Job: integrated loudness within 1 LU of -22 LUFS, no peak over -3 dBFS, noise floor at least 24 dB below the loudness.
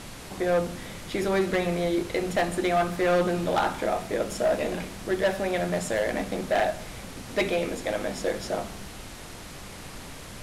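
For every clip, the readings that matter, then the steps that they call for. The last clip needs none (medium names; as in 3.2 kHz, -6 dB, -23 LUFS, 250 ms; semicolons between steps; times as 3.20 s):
clipped samples 1.4%; clipping level -18.0 dBFS; noise floor -42 dBFS; noise floor target -51 dBFS; loudness -27.0 LUFS; peak level -18.0 dBFS; loudness target -22.0 LUFS
-> clip repair -18 dBFS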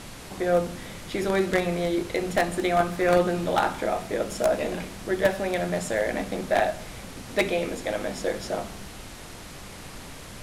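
clipped samples 0.0%; noise floor -42 dBFS; noise floor target -50 dBFS
-> noise print and reduce 8 dB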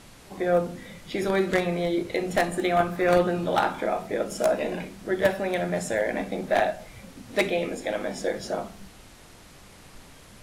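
noise floor -50 dBFS; noise floor target -51 dBFS
-> noise print and reduce 6 dB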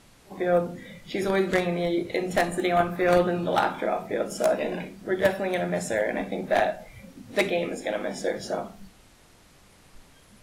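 noise floor -55 dBFS; loudness -26.5 LUFS; peak level -9.0 dBFS; loudness target -22.0 LUFS
-> trim +4.5 dB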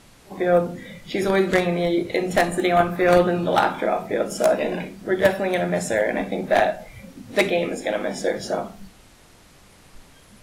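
loudness -22.0 LUFS; peak level -4.5 dBFS; noise floor -51 dBFS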